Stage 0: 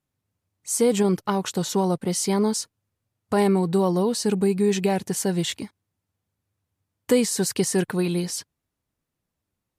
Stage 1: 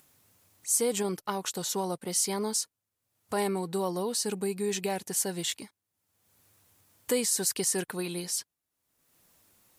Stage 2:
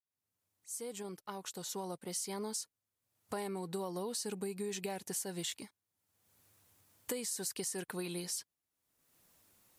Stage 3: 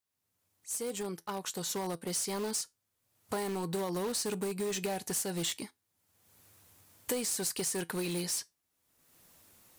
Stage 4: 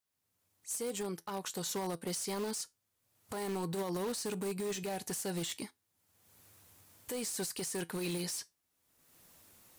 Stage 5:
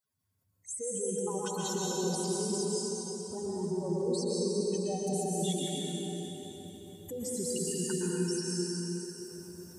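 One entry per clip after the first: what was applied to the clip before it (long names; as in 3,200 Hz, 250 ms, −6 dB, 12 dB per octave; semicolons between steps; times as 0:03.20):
low-shelf EQ 230 Hz −12 dB; upward compression, threshold −43 dBFS; high-shelf EQ 6,500 Hz +9.5 dB; level −6 dB
fade in at the beginning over 3.14 s; downward compressor 10 to 1, threshold −31 dBFS, peak gain reduction 9.5 dB; level −4 dB
tuned comb filter 84 Hz, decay 0.19 s, harmonics all, mix 40%; in parallel at −9.5 dB: wrap-around overflow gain 38 dB; on the sum: level +7 dB
brickwall limiter −29.5 dBFS, peak gain reduction 10 dB
expanding power law on the bin magnitudes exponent 3.2; dense smooth reverb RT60 4.5 s, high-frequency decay 0.8×, pre-delay 105 ms, DRR −6 dB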